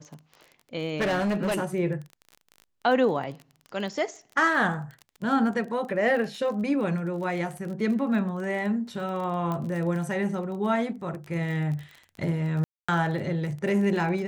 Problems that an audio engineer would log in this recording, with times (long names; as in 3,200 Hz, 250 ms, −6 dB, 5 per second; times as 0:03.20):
surface crackle 26 per second −34 dBFS
0:00.97–0:01.62: clipping −22.5 dBFS
0:09.52: click −19 dBFS
0:12.64–0:12.88: drop-out 245 ms